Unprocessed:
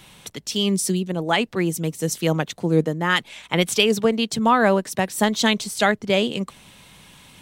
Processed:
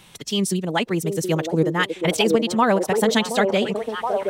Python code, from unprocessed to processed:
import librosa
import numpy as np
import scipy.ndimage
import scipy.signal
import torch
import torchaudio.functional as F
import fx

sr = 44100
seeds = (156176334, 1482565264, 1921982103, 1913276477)

y = fx.stretch_vocoder(x, sr, factor=0.58)
y = fx.echo_stepped(y, sr, ms=723, hz=430.0, octaves=0.7, feedback_pct=70, wet_db=-0.5)